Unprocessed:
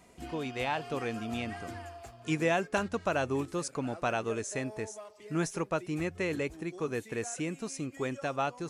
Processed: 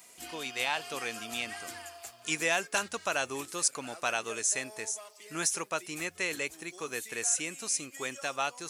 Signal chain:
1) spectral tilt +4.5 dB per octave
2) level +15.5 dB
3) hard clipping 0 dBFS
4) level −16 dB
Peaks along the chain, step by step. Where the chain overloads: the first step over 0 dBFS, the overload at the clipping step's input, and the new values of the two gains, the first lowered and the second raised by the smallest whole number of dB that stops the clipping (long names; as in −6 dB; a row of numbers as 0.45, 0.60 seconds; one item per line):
−9.0, +6.5, 0.0, −16.0 dBFS
step 2, 6.5 dB
step 2 +8.5 dB, step 4 −9 dB